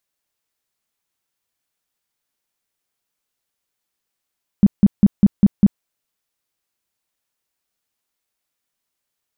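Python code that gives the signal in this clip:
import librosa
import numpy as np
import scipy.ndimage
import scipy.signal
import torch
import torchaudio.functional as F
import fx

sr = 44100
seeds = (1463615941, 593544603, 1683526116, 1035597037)

y = fx.tone_burst(sr, hz=201.0, cycles=7, every_s=0.2, bursts=6, level_db=-5.5)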